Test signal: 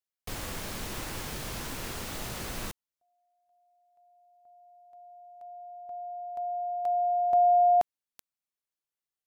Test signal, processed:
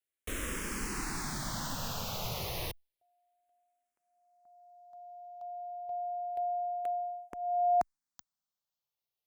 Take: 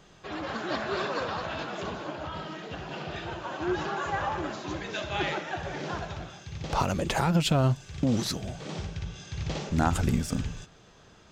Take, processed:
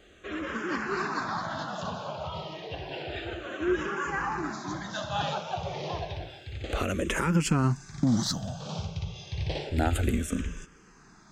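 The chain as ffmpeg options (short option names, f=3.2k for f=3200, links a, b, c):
-filter_complex "[0:a]asplit=2[a][b];[b]afreqshift=-0.3[c];[a][c]amix=inputs=2:normalize=1,volume=3dB"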